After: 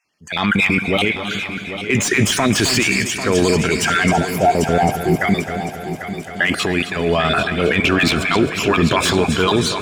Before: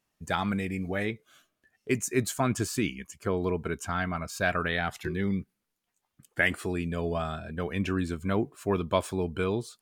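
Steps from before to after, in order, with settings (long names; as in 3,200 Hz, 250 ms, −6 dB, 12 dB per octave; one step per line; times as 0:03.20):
time-frequency cells dropped at random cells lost 24%
meter weighting curve D
time-frequency box erased 0:04.11–0:05.22, 930–10,000 Hz
high-shelf EQ 4,700 Hz −10.5 dB
transient designer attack −7 dB, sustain +7 dB
automatic gain control gain up to 15 dB
brickwall limiter −12 dBFS, peak gain reduction 11 dB
echo machine with several playback heads 265 ms, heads first and third, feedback 56%, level −11.5 dB
on a send at −17 dB: convolution reverb RT60 4.6 s, pre-delay 5 ms
on the sum: slew-rate limiting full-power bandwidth 390 Hz
level +6.5 dB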